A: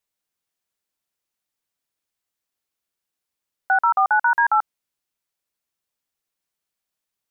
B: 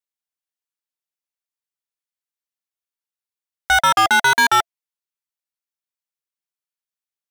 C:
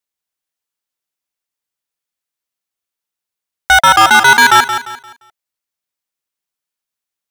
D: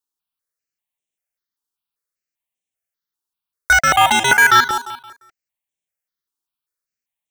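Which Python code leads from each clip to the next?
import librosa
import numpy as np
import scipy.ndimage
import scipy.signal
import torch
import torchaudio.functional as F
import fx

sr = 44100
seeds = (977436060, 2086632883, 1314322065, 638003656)

y1 = fx.low_shelf(x, sr, hz=440.0, db=-9.5)
y1 = fx.notch(y1, sr, hz=680.0, q=18.0)
y1 = fx.leveller(y1, sr, passes=5)
y2 = fx.echo_feedback(y1, sr, ms=174, feedback_pct=32, wet_db=-9.5)
y2 = y2 * 10.0 ** (7.0 / 20.0)
y3 = fx.phaser_held(y2, sr, hz=5.1, low_hz=580.0, high_hz=4700.0)
y3 = y3 * 10.0 ** (-1.0 / 20.0)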